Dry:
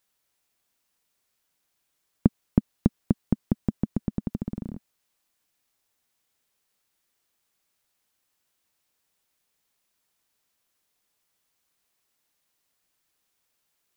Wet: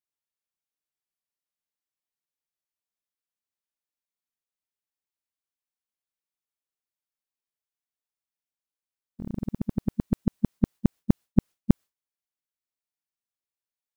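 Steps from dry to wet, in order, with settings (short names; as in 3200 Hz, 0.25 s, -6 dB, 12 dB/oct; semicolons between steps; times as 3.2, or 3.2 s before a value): whole clip reversed; gate with hold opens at -52 dBFS; gain +1 dB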